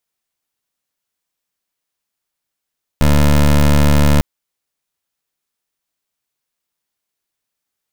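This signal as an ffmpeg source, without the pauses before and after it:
ffmpeg -f lavfi -i "aevalsrc='0.316*(2*lt(mod(73.2*t,1),0.19)-1)':duration=1.2:sample_rate=44100" out.wav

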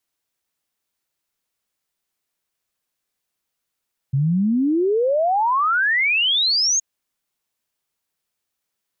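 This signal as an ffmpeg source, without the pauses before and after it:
ffmpeg -f lavfi -i "aevalsrc='0.168*clip(min(t,2.67-t)/0.01,0,1)*sin(2*PI*130*2.67/log(6700/130)*(exp(log(6700/130)*t/2.67)-1))':duration=2.67:sample_rate=44100" out.wav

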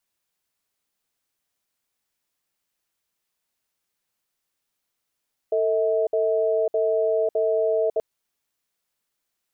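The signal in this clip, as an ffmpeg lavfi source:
ffmpeg -f lavfi -i "aevalsrc='0.0841*(sin(2*PI*447*t)+sin(2*PI*642*t))*clip(min(mod(t,0.61),0.55-mod(t,0.61))/0.005,0,1)':duration=2.48:sample_rate=44100" out.wav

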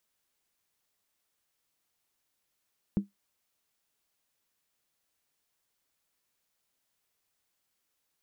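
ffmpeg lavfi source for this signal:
ffmpeg -f lavfi -i "aevalsrc='0.112*pow(10,-3*t/0.15)*sin(2*PI*200*t)+0.0299*pow(10,-3*t/0.119)*sin(2*PI*318.8*t)+0.00794*pow(10,-3*t/0.103)*sin(2*PI*427.2*t)+0.00211*pow(10,-3*t/0.099)*sin(2*PI*459.2*t)+0.000562*pow(10,-3*t/0.092)*sin(2*PI*530.6*t)':duration=0.63:sample_rate=44100" out.wav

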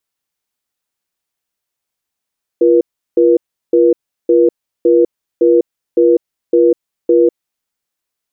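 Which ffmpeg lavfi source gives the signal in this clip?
ffmpeg -f lavfi -i "aevalsrc='0.355*(sin(2*PI*345*t)+sin(2*PI*481*t))*clip(min(mod(t,0.56),0.2-mod(t,0.56))/0.005,0,1)':duration=4.78:sample_rate=44100" out.wav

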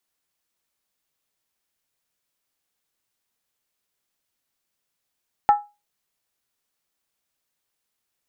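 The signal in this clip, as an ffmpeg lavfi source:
ffmpeg -f lavfi -i "aevalsrc='0.398*pow(10,-3*t/0.26)*sin(2*PI*827*t)+0.1*pow(10,-3*t/0.206)*sin(2*PI*1318.2*t)+0.0251*pow(10,-3*t/0.178)*sin(2*PI*1766.5*t)+0.00631*pow(10,-3*t/0.172)*sin(2*PI*1898.8*t)+0.00158*pow(10,-3*t/0.16)*sin(2*PI*2194*t)':duration=0.63:sample_rate=44100" out.wav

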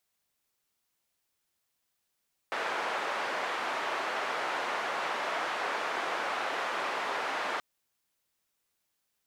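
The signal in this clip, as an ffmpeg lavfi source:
ffmpeg -f lavfi -i "anoisesrc=color=white:duration=5.08:sample_rate=44100:seed=1,highpass=frequency=550,lowpass=frequency=1400,volume=-14.6dB" out.wav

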